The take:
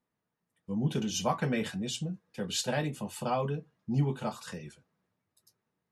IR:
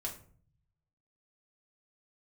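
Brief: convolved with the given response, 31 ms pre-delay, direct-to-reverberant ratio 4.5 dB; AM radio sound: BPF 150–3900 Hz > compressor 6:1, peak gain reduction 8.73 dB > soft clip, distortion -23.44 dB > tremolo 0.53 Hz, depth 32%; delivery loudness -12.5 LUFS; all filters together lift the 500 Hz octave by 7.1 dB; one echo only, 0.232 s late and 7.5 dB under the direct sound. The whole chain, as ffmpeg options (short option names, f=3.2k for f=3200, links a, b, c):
-filter_complex "[0:a]equalizer=f=500:t=o:g=8.5,aecho=1:1:232:0.422,asplit=2[a][b];[1:a]atrim=start_sample=2205,adelay=31[c];[b][c]afir=irnorm=-1:irlink=0,volume=-4.5dB[d];[a][d]amix=inputs=2:normalize=0,highpass=150,lowpass=3.9k,acompressor=threshold=-27dB:ratio=6,asoftclip=threshold=-21dB,tremolo=f=0.53:d=0.32,volume=22.5dB"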